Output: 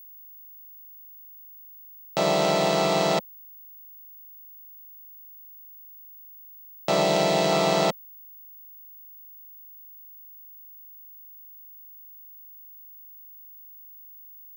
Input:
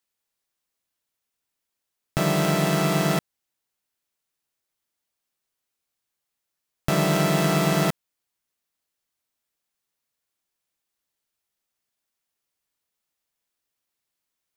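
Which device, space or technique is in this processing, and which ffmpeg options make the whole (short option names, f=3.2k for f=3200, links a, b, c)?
old television with a line whistle: -filter_complex "[0:a]highpass=f=200:w=0.5412,highpass=f=200:w=1.3066,equalizer=f=260:t=q:w=4:g=-10,equalizer=f=540:t=q:w=4:g=7,equalizer=f=830:t=q:w=4:g=7,equalizer=f=1.6k:t=q:w=4:g=-8,equalizer=f=4.1k:t=q:w=4:g=6,lowpass=f=7.7k:w=0.5412,lowpass=f=7.7k:w=1.3066,aeval=exprs='val(0)+0.00631*sin(2*PI*15625*n/s)':c=same,asettb=1/sr,asplit=3[a][b][c];[a]atrim=end=7.024[d];[b]atrim=start=7.02:end=7.52,asetpts=PTS-STARTPTS,afade=t=in:d=0.004:c=qsin,afade=t=out:st=0.496:d=0.004:c=qsin,equalizer=f=1.2k:t=o:w=0.37:g=-6[e];[c]atrim=start=7.516[f];[d][e]acrossfade=d=0.004:c1=hsin:c2=qsin[g];[g][f]acrossfade=d=0.004:c1=qsin:c2=hsin"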